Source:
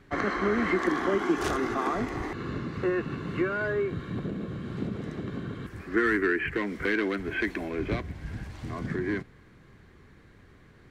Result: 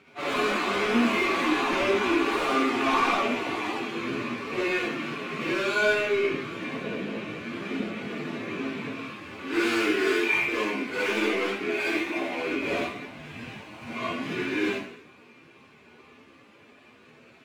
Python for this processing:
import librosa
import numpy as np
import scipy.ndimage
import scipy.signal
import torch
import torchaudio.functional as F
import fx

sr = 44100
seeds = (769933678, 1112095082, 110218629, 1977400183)

y = scipy.ndimage.median_filter(x, 25, mode='constant')
y = fx.weighting(y, sr, curve='A')
y = y + 10.0 ** (-22.0 / 20.0) * np.pad(y, (int(141 * sr / 1000.0), 0))[:len(y)]
y = fx.fold_sine(y, sr, drive_db=8, ceiling_db=-17.0)
y = fx.doubler(y, sr, ms=41.0, db=-14)
y = fx.rev_schroeder(y, sr, rt60_s=0.33, comb_ms=26, drr_db=-5.0)
y = fx.stretch_vocoder_free(y, sr, factor=1.6)
y = fx.peak_eq(y, sr, hz=2400.0, db=13.0, octaves=0.52)
y = y * 10.0 ** (-6.0 / 20.0)